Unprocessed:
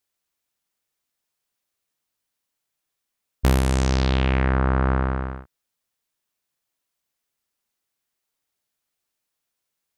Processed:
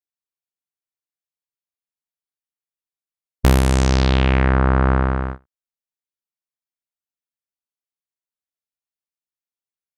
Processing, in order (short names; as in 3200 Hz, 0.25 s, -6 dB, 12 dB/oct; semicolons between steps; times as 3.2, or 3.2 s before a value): gate -30 dBFS, range -22 dB; gain +4.5 dB